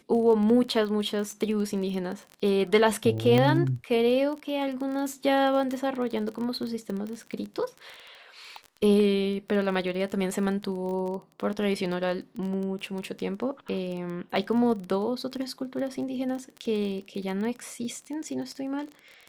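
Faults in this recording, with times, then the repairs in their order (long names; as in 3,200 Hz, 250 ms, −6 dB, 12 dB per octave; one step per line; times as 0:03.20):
surface crackle 22 per second −32 dBFS
0:03.38: click −12 dBFS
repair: click removal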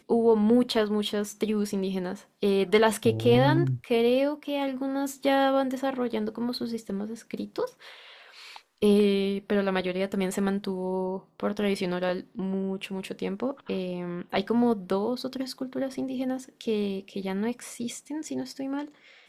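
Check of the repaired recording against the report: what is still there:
0:03.38: click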